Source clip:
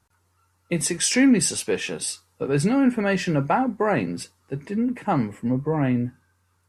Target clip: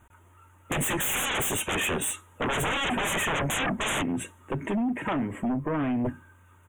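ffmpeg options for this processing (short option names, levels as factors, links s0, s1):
-filter_complex "[0:a]highshelf=f=5400:g=-10.5,aecho=1:1:3.2:0.35,asplit=3[s0][s1][s2];[s0]afade=t=out:st=4.01:d=0.02[s3];[s1]acompressor=threshold=0.0282:ratio=8,afade=t=in:st=4.01:d=0.02,afade=t=out:st=6.04:d=0.02[s4];[s2]afade=t=in:st=6.04:d=0.02[s5];[s3][s4][s5]amix=inputs=3:normalize=0,aeval=exprs='0.133*sin(PI/2*4.47*val(0)/0.133)':c=same,acrusher=bits=10:mix=0:aa=0.000001,asuperstop=centerf=4800:order=8:qfactor=1.6,volume=0.501"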